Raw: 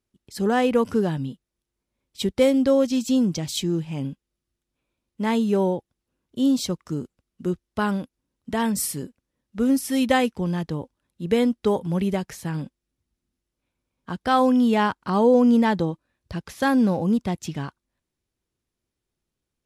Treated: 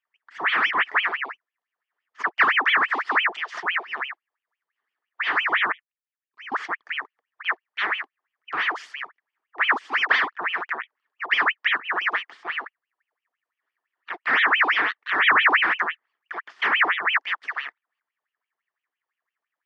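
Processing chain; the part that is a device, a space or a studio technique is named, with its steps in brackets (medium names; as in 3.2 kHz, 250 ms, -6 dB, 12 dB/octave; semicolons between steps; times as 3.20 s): voice changer toy (ring modulator with a swept carrier 1.7 kHz, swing 70%, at 5.9 Hz; cabinet simulation 480–4000 Hz, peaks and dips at 550 Hz -10 dB, 790 Hz -4 dB, 1.2 kHz +4 dB, 1.8 kHz +9 dB, 2.6 kHz -5 dB, 3.9 kHz -9 dB); 5.72–6.52 s: amplifier tone stack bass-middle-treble 6-0-2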